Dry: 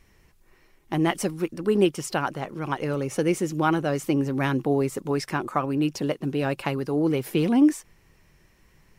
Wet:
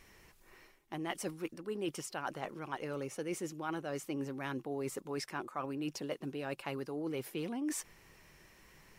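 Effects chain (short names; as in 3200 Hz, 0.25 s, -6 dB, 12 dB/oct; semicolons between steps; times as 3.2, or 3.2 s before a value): low shelf 230 Hz -9.5 dB; reverse; compressor 5:1, threshold -40 dBFS, peak gain reduction 20 dB; reverse; gain +2.5 dB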